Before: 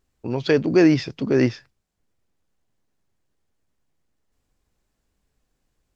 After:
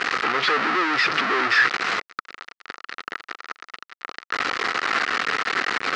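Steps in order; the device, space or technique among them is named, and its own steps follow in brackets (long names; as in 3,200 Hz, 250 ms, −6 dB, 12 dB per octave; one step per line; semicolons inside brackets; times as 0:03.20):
home computer beeper (sign of each sample alone; loudspeaker in its box 560–4,200 Hz, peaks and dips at 600 Hz −9 dB, 900 Hz −5 dB, 1,300 Hz +10 dB, 1,900 Hz +6 dB, 3,400 Hz −5 dB)
level +8 dB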